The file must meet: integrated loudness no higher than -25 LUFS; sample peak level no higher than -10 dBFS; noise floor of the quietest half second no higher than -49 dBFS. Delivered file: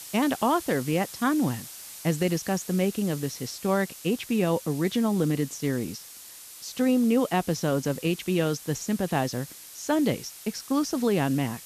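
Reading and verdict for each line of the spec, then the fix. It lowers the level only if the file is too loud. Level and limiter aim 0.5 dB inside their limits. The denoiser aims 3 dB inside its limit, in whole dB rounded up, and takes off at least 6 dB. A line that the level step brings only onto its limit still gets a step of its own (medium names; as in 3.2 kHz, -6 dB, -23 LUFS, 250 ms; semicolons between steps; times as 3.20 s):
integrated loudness -27.0 LUFS: pass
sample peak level -11.5 dBFS: pass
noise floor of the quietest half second -45 dBFS: fail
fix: noise reduction 7 dB, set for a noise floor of -45 dBFS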